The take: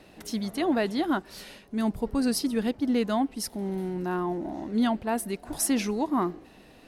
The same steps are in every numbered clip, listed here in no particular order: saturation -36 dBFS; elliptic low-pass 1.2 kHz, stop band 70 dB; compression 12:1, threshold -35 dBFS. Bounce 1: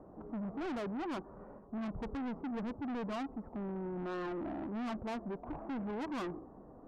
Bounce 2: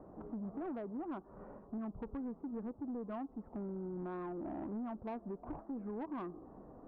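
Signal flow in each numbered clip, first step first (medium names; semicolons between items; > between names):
elliptic low-pass > saturation > compression; compression > elliptic low-pass > saturation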